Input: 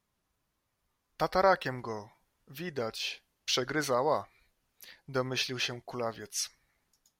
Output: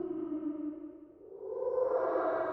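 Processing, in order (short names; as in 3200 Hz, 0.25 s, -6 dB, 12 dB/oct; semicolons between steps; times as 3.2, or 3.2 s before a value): Paulstretch 6.4×, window 0.50 s, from 1.8; on a send: diffused feedback echo 0.524 s, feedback 43%, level -8 dB; on the sum: wide varispeed 2.85×; low-pass sweep 270 Hz -> 630 Hz, 0.38–1.98; gain +5.5 dB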